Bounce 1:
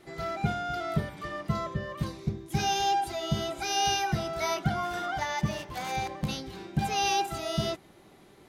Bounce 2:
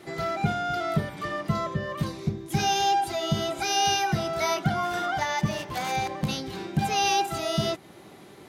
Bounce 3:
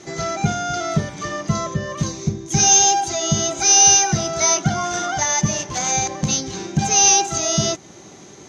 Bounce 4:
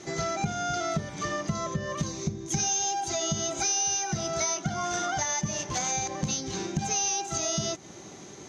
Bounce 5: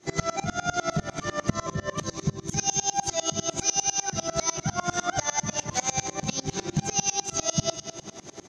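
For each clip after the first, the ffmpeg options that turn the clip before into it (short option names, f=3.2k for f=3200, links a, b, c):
-filter_complex "[0:a]highpass=85,asplit=2[a][b];[b]acompressor=threshold=-38dB:ratio=6,volume=0dB[c];[a][c]amix=inputs=2:normalize=0,volume=1.5dB"
-af "lowpass=f=6.3k:t=q:w=14,lowshelf=f=430:g=3.5,volume=3dB"
-af "acompressor=threshold=-23dB:ratio=6,volume=-3dB"
-filter_complex "[0:a]asplit=2[a][b];[b]aecho=0:1:221|442|663|884|1105:0.299|0.146|0.0717|0.0351|0.0172[c];[a][c]amix=inputs=2:normalize=0,aeval=exprs='val(0)*pow(10,-26*if(lt(mod(-10*n/s,1),2*abs(-10)/1000),1-mod(-10*n/s,1)/(2*abs(-10)/1000),(mod(-10*n/s,1)-2*abs(-10)/1000)/(1-2*abs(-10)/1000))/20)':c=same,volume=8.5dB"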